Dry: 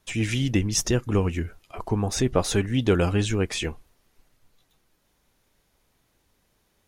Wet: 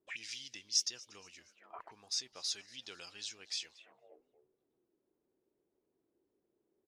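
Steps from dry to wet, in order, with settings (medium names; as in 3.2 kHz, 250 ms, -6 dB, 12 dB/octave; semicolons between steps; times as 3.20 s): frequency-shifting echo 236 ms, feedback 49%, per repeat +120 Hz, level -22 dB; auto-wah 350–4900 Hz, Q 4.6, up, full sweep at -26.5 dBFS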